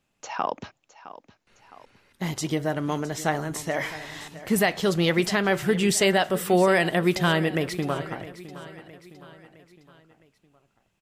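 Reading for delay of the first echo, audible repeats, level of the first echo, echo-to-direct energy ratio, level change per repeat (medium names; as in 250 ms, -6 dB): 662 ms, 4, -16.0 dB, -15.0 dB, -6.0 dB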